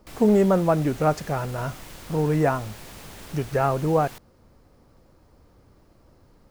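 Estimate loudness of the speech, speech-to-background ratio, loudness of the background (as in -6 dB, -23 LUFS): -23.5 LUFS, 18.5 dB, -42.0 LUFS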